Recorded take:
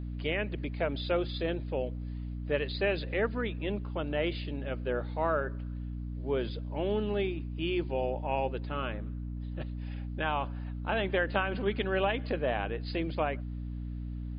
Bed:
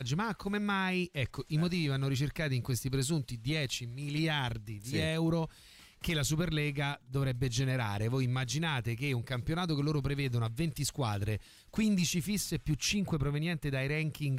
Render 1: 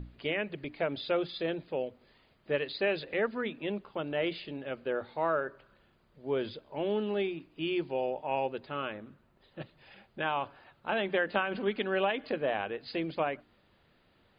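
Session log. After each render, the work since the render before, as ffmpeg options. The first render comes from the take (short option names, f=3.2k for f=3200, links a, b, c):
-af "bandreject=f=60:t=h:w=6,bandreject=f=120:t=h:w=6,bandreject=f=180:t=h:w=6,bandreject=f=240:t=h:w=6,bandreject=f=300:t=h:w=6"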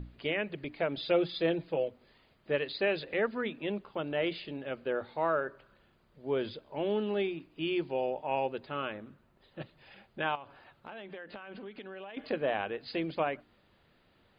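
-filter_complex "[0:a]asettb=1/sr,asplit=3[a][b][c];[a]atrim=end=0.974[d];[b]atrim=start=0.97:end=1.88,asetpts=PTS-STARTPTS,afade=t=in:d=0.004:c=qsin,afade=t=out:st=0.906:d=0.004:c=qsin,aecho=1:1:6.1:0.65,atrim=end_sample=40131[e];[c]atrim=start=1.876[f];[d][e]acrossfade=d=0.004:c1=hsin:c2=qsin[g];[g][f]acrossfade=d=0.004:c1=qsin:c2=hsin,asettb=1/sr,asplit=3[h][i][j];[h]atrim=end=10.354[k];[i]atrim=start=10.35:end=12.17,asetpts=PTS-STARTPTS,afade=t=in:d=0.004:c=qsin,afade=t=out:st=1.816:d=0.004:c=qsin,acompressor=threshold=-42dB:ratio=6:attack=3.2:release=140:knee=1:detection=peak[l];[j]atrim=start=12.166[m];[k][l]acrossfade=d=0.004:c1=hsin:c2=qsin[n];[n][m]acrossfade=d=0.004:c1=qsin:c2=hsin"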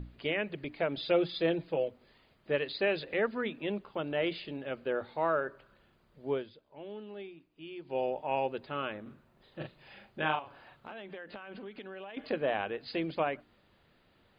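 -filter_complex "[0:a]asettb=1/sr,asplit=3[a][b][c];[a]atrim=end=9.024[d];[b]atrim=start=9.02:end=10.92,asetpts=PTS-STARTPTS,afade=t=in:d=0.004:c=qsin,afade=t=out:st=1.896:d=0.004:c=qsin,asplit=2[e][f];[f]adelay=39,volume=-3.5dB[g];[e][g]amix=inputs=2:normalize=0,atrim=end_sample=83790[h];[c]atrim=start=10.916[i];[d][h]acrossfade=d=0.004:c1=hsin:c2=qsin[j];[j][i]acrossfade=d=0.004:c1=qsin:c2=hsin,asplit=3[k][l][m];[k]atrim=end=6.45,asetpts=PTS-STARTPTS,afade=t=out:st=6.32:d=0.13:silence=0.223872[n];[l]atrim=start=6.45:end=7.84,asetpts=PTS-STARTPTS,volume=-13dB[o];[m]atrim=start=7.84,asetpts=PTS-STARTPTS,afade=t=in:d=0.13:silence=0.223872[p];[n][o][p]concat=n=3:v=0:a=1"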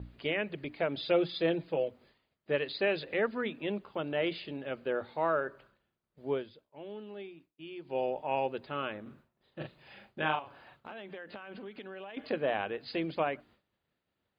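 -af "agate=range=-33dB:threshold=-55dB:ratio=3:detection=peak,highpass=46"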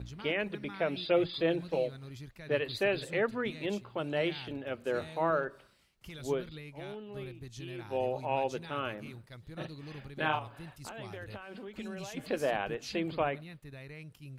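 -filter_complex "[1:a]volume=-14.5dB[a];[0:a][a]amix=inputs=2:normalize=0"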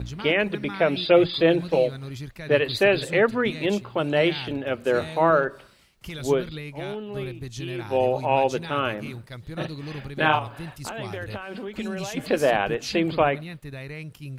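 -af "volume=10.5dB"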